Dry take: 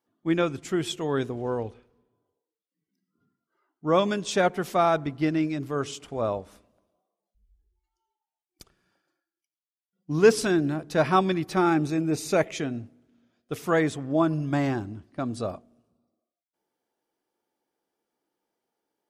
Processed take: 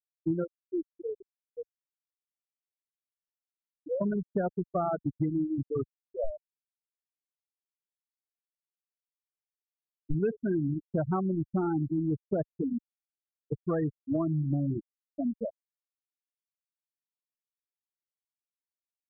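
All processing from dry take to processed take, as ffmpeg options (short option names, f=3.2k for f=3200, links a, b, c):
-filter_complex "[0:a]asettb=1/sr,asplit=3[a][b][c];[a]atrim=end=0.444[d];[b]atrim=start=0.44:end=4.01,asetpts=PTS-STARTPTS,afade=t=in:d=0.004:c=qsin,afade=t=out:st=3.566:d=0.004:c=qsin,aecho=1:1:2.3:0.99,atrim=end_sample=157437,acompressor=threshold=-35dB:ratio=1.5:attack=3.2:release=140:knee=1:detection=peak,flanger=delay=3.8:depth=5.5:regen=-25:speed=1.4:shape=sinusoidal[e];[c]atrim=start=4.006[f];[d][e]acrossfade=d=0.004:c1=hsin:c2=qsin[g];[g][f]acrossfade=d=0.004:c1=qsin:c2=hsin,asettb=1/sr,asplit=3[h][i][j];[h]atrim=end=6.244[k];[i]atrim=start=6.24:end=10.14,asetpts=PTS-STARTPTS,afade=t=in:d=0.004:c=qsin,afade=t=out:st=3.896:d=0.004:c=qsin,aeval=exprs='clip(val(0),-1,0.0299)':c=same,asubboost=boost=3.5:cutoff=99[l];[j]atrim=start=10.136[m];[k][l]acrossfade=d=0.004:c1=hsin:c2=qsin[n];[n][m]acrossfade=d=0.004:c1=qsin:c2=hsin,afftfilt=real='re*gte(hypot(re,im),0.224)':imag='im*gte(hypot(re,im),0.224)':win_size=1024:overlap=0.75,aemphasis=mode=reproduction:type=riaa,acompressor=threshold=-23dB:ratio=6,volume=-3dB"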